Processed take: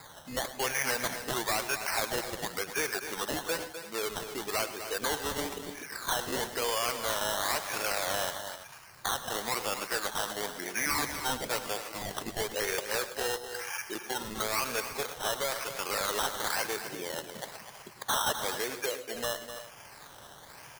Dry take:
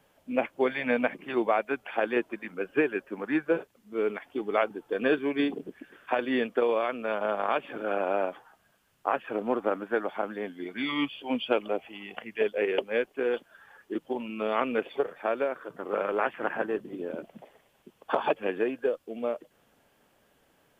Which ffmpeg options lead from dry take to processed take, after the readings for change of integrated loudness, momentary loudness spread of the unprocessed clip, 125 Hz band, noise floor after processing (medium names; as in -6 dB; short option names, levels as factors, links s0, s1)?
-2.0 dB, 10 LU, +3.5 dB, -51 dBFS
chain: -af "acompressor=threshold=0.00251:ratio=2,equalizer=f=125:t=o:w=1:g=10,equalizer=f=250:t=o:w=1:g=-9,equalizer=f=1000:t=o:w=1:g=11,equalizer=f=2000:t=o:w=1:g=6,acrusher=samples=15:mix=1:aa=0.000001:lfo=1:lforange=9:lforate=1,volume=56.2,asoftclip=hard,volume=0.0178,highshelf=f=2500:g=8.5,aecho=1:1:101|109|123|253|333:0.112|0.141|0.133|0.316|0.168,volume=2.24"